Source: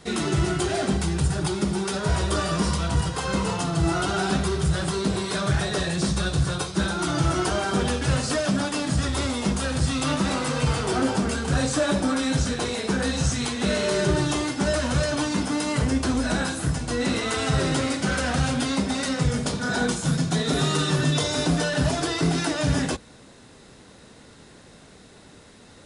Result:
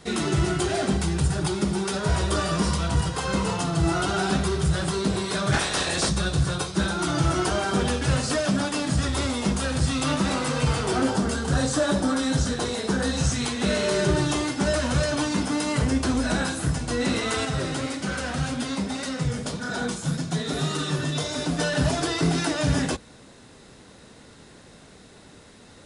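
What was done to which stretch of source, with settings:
5.52–6.08 s: spectral peaks clipped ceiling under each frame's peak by 18 dB
11.10–13.17 s: peaking EQ 2.4 kHz -6.5 dB 0.39 oct
17.45–21.59 s: flange 1.8 Hz, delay 2.7 ms, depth 8 ms, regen +62%

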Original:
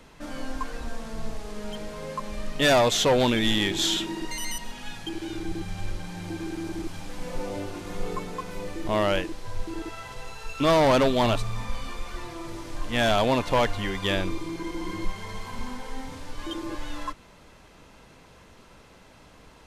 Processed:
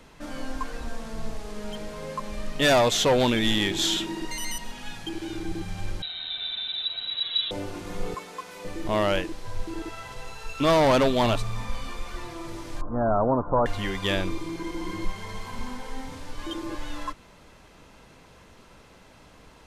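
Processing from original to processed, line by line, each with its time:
6.02–7.51 s: frequency inversion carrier 3.9 kHz
8.14–8.65 s: high-pass 810 Hz 6 dB/octave
12.81–13.66 s: steep low-pass 1.4 kHz 72 dB/octave

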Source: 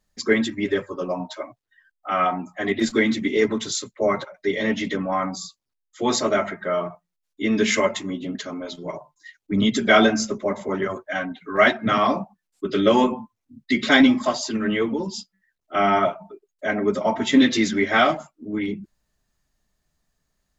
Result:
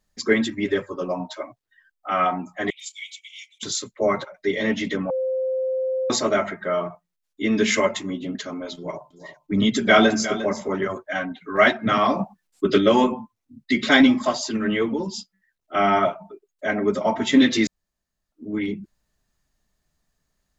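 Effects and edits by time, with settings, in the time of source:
2.70–3.63 s: rippled Chebyshev high-pass 2.2 kHz, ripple 9 dB
5.10–6.10 s: bleep 521 Hz -21 dBFS
8.75–10.76 s: delay 354 ms -13 dB
12.19–12.78 s: gain +6 dB
17.67–18.32 s: room tone

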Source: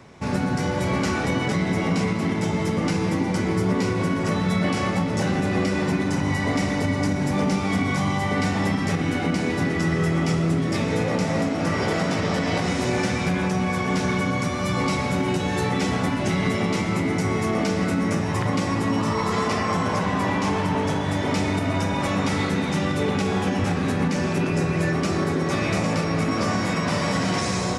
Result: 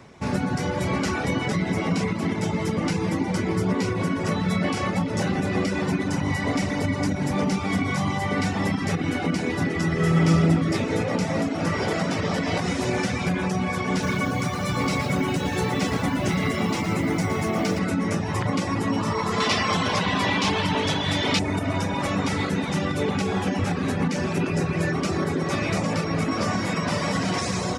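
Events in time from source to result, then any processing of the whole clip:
9.93–10.46 s: reverb throw, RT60 2.5 s, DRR -0.5 dB
13.91–17.79 s: bit-crushed delay 115 ms, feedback 35%, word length 7-bit, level -6.5 dB
19.40–21.39 s: peaking EQ 3.6 kHz +12.5 dB 1.4 oct
whole clip: reverb removal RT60 0.59 s

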